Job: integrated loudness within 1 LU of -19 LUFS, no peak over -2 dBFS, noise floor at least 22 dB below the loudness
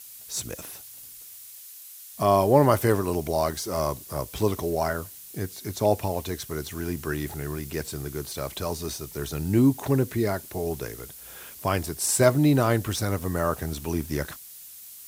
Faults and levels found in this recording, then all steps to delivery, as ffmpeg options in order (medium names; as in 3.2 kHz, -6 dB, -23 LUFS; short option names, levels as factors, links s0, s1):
noise floor -45 dBFS; noise floor target -48 dBFS; loudness -26.0 LUFS; peak level -5.0 dBFS; loudness target -19.0 LUFS
-> -af "afftdn=nr=6:nf=-45"
-af "volume=2.24,alimiter=limit=0.794:level=0:latency=1"